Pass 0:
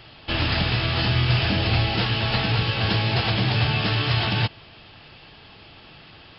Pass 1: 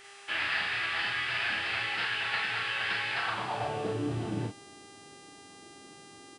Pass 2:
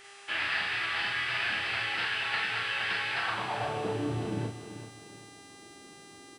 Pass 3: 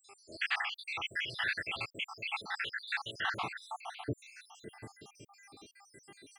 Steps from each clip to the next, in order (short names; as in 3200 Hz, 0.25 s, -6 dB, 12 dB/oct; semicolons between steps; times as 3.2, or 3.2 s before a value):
band-pass sweep 1800 Hz -> 310 Hz, 3.12–4.05; buzz 400 Hz, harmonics 25, -56 dBFS -3 dB/oct; early reflections 34 ms -6 dB, 45 ms -7 dB
lo-fi delay 0.388 s, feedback 35%, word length 10-bit, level -11.5 dB
random spectral dropouts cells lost 76%